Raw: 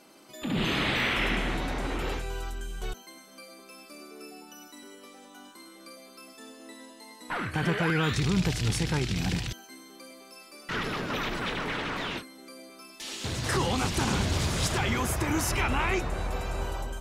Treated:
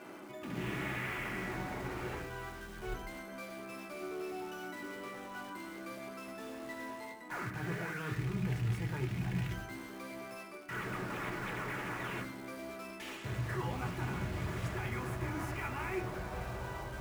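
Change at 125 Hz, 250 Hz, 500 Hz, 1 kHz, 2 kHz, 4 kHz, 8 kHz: -6.5 dB, -9.0 dB, -7.5 dB, -8.0 dB, -8.5 dB, -16.5 dB, -16.5 dB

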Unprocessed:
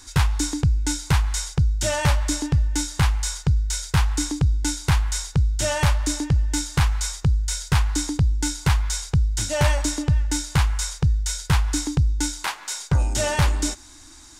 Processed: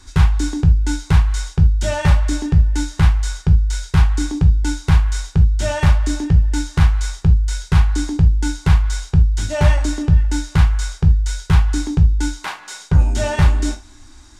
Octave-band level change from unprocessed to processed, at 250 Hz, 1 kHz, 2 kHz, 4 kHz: +5.5 dB, +1.5 dB, +1.5 dB, -2.0 dB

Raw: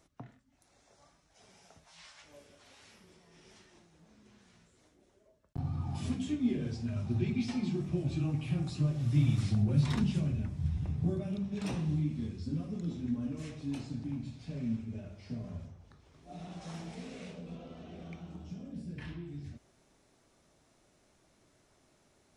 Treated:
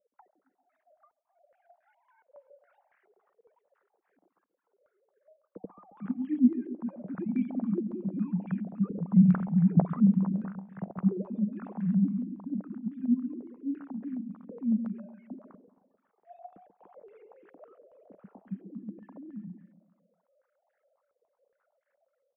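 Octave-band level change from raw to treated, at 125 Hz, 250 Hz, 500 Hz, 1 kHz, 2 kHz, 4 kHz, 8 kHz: -0.5 dB, +7.0 dB, +0.5 dB, +3.5 dB, no reading, under -25 dB, under -25 dB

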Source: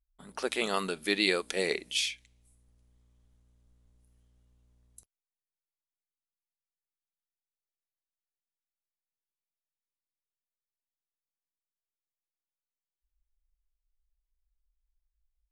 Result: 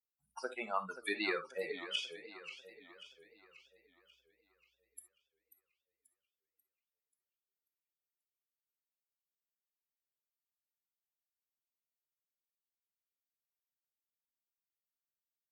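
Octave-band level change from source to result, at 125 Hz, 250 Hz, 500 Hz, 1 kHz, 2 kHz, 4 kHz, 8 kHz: -15.0 dB, -10.5 dB, -8.5 dB, -3.5 dB, -7.0 dB, -10.0 dB, -16.0 dB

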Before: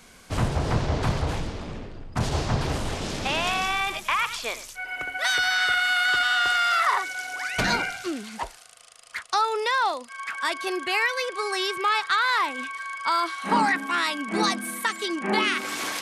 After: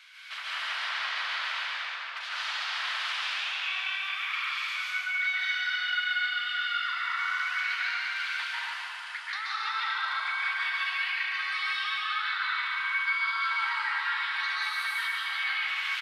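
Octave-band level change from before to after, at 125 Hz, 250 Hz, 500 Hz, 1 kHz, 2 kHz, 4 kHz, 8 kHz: under -40 dB, under -40 dB, under -25 dB, -8.5 dB, -2.0 dB, -3.0 dB, -14.5 dB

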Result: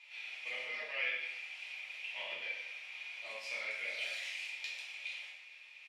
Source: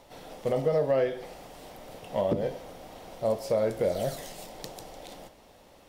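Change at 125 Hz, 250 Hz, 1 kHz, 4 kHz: under -40 dB, under -35 dB, -16.5 dB, +3.5 dB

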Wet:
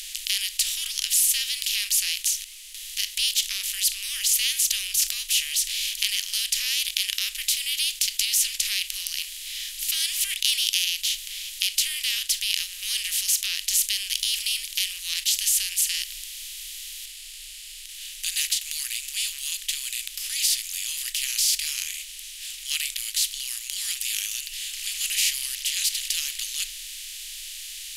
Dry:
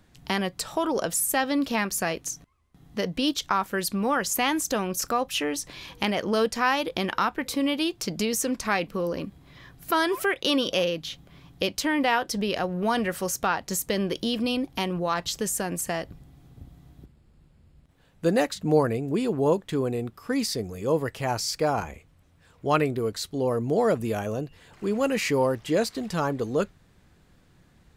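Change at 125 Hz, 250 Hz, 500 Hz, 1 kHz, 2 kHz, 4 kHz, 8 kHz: under -30 dB, under -40 dB, under -40 dB, under -30 dB, -1.5 dB, +9.5 dB, +10.5 dB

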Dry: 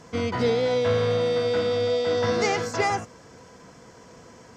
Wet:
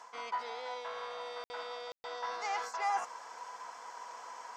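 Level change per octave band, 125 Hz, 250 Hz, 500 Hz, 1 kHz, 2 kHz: under -40 dB, under -30 dB, -22.0 dB, -5.5 dB, -11.5 dB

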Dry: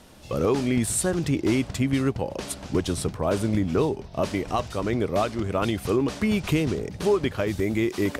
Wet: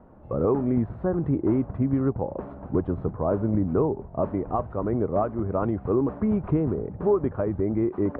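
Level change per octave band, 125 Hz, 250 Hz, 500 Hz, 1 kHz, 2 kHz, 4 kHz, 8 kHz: 0.0 dB, 0.0 dB, 0.0 dB, -1.0 dB, -14.5 dB, under -35 dB, under -40 dB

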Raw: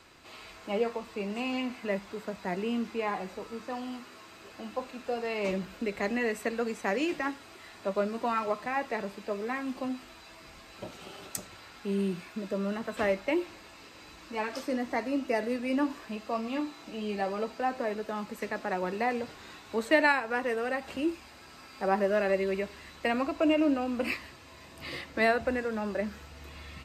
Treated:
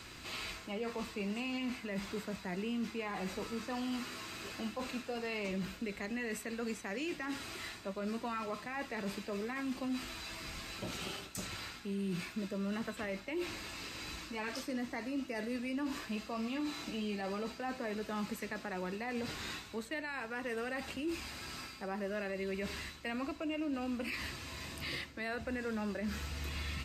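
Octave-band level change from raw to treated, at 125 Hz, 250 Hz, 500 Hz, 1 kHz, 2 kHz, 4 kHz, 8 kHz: -1.5 dB, -5.5 dB, -10.5 dB, -10.0 dB, -7.0 dB, -0.5 dB, 0.0 dB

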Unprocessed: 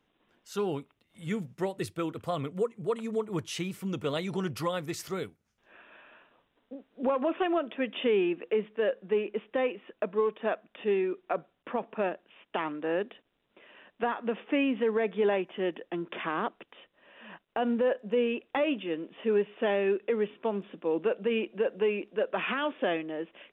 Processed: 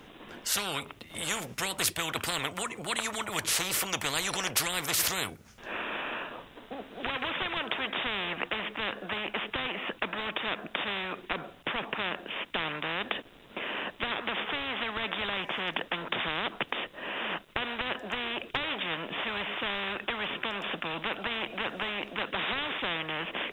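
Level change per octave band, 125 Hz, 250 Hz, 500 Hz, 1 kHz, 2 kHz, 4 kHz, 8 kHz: -3.5 dB, -8.0 dB, -10.0 dB, +1.5 dB, +7.0 dB, +11.5 dB, no reading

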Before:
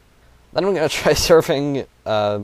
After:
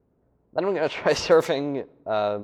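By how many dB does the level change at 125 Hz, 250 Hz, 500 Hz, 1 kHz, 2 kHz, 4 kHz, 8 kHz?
-11.0 dB, -7.0 dB, -5.5 dB, -5.0 dB, -5.5 dB, -9.0 dB, -12.5 dB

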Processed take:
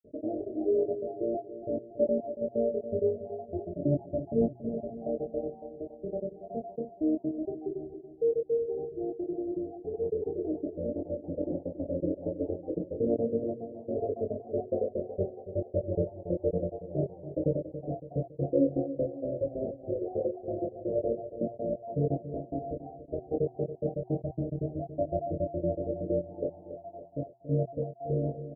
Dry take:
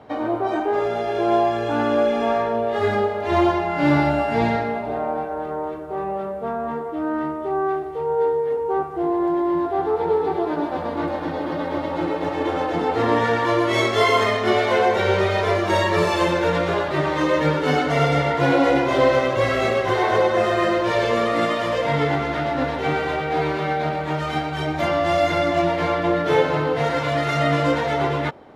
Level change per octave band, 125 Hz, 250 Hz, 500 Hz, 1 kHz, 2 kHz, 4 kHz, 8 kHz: -9.0 dB, -9.5 dB, -10.5 dB, -24.5 dB, under -40 dB, under -40 dB, under -35 dB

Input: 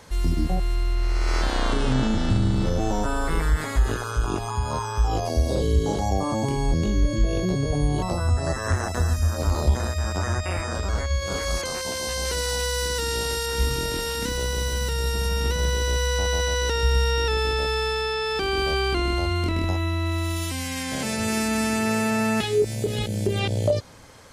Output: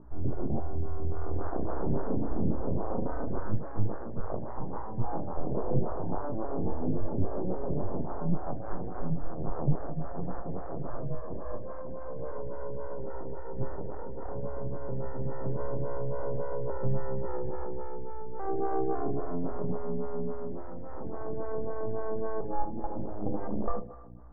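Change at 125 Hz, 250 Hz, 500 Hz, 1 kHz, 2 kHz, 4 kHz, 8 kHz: -11.0 dB, -8.0 dB, -7.5 dB, -9.0 dB, -24.5 dB, under -40 dB, under -40 dB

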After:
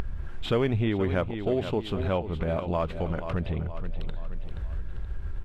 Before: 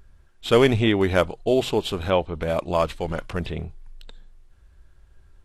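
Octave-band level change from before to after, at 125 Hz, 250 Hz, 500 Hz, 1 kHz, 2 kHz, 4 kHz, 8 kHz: -1.0 dB, -4.5 dB, -7.0 dB, -7.0 dB, -9.0 dB, -10.0 dB, under -15 dB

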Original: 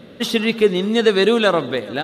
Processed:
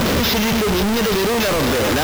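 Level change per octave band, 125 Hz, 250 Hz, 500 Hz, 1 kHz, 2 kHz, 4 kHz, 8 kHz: +6.5 dB, +1.5 dB, -2.5 dB, +4.0 dB, +1.5 dB, +2.5 dB, +12.0 dB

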